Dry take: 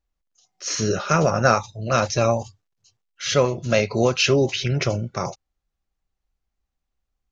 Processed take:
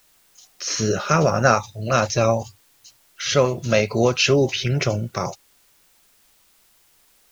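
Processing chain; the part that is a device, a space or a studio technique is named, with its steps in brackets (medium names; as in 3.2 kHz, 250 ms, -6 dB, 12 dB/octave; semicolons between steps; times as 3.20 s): noise-reduction cassette on a plain deck (tape noise reduction on one side only encoder only; wow and flutter 27 cents; white noise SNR 36 dB); trim +1 dB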